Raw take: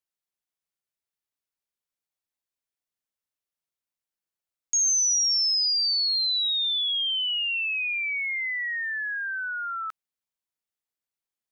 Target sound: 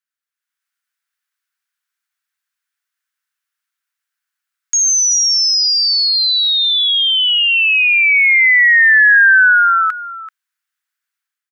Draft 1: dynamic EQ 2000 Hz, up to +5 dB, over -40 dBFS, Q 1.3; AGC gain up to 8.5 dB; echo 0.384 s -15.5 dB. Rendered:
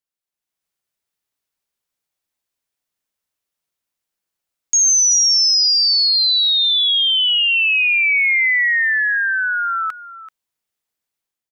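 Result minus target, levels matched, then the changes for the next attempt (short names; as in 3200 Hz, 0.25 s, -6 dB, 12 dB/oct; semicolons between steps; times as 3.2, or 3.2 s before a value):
2000 Hz band -3.5 dB
add after dynamic EQ: resonant high-pass 1500 Hz, resonance Q 3.5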